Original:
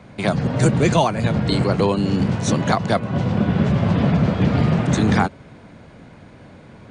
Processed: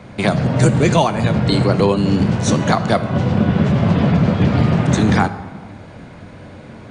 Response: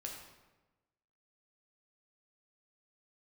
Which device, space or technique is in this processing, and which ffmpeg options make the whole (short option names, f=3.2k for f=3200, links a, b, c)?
ducked reverb: -filter_complex "[0:a]asplit=3[a][b][c];[1:a]atrim=start_sample=2205[d];[b][d]afir=irnorm=-1:irlink=0[e];[c]apad=whole_len=304627[f];[e][f]sidechaincompress=threshold=-21dB:ratio=8:attack=44:release=850,volume=3.5dB[g];[a][g]amix=inputs=2:normalize=0"